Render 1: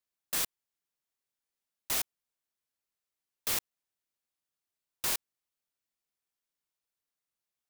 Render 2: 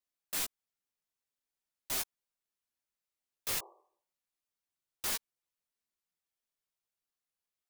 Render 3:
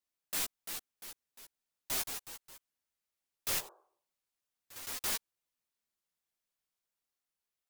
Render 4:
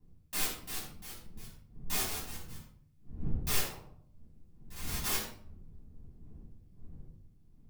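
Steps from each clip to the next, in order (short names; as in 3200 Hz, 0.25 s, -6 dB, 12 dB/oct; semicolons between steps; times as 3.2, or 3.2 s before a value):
spectral repair 3.59–4.13, 330–1200 Hz both; chorus voices 6, 0.38 Hz, delay 14 ms, depth 4.3 ms
echoes that change speed 0.38 s, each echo +2 st, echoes 3, each echo -6 dB
wind noise 120 Hz -54 dBFS; shoebox room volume 760 m³, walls furnished, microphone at 9.4 m; gain -7.5 dB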